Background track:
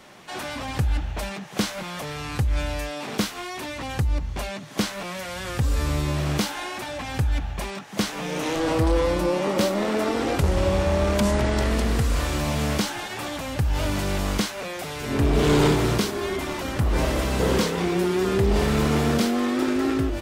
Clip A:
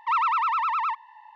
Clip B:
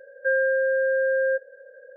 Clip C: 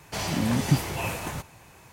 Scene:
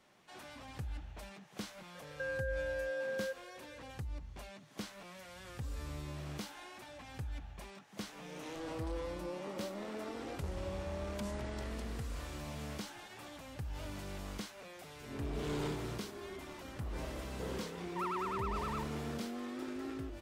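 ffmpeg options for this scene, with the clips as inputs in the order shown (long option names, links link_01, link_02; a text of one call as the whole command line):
ffmpeg -i bed.wav -i cue0.wav -i cue1.wav -filter_complex "[0:a]volume=-19dB[link_01];[2:a]acompressor=threshold=-26dB:ratio=6:attack=3.2:release=140:knee=1:detection=peak,atrim=end=1.96,asetpts=PTS-STARTPTS,volume=-9.5dB,afade=type=in:duration=0.004:curve=hsin,afade=type=out:start_time=1.956:duration=0.004:curve=hsin,adelay=1950[link_02];[1:a]atrim=end=1.35,asetpts=PTS-STARTPTS,volume=-16dB,afade=type=in:duration=0.004:curve=hsin,afade=type=out:start_time=1.346:duration=0.004:curve=hsin,adelay=17890[link_03];[link_01][link_02][link_03]amix=inputs=3:normalize=0" out.wav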